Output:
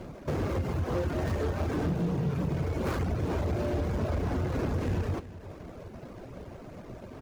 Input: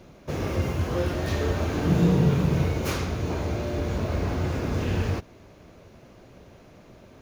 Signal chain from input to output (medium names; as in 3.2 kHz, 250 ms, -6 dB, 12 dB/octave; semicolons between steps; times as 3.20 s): median filter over 15 samples; reverb removal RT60 0.68 s; compression, threshold -32 dBFS, peak gain reduction 14.5 dB; saturation -31.5 dBFS, distortion -15 dB; delay 374 ms -15 dB; trim +8 dB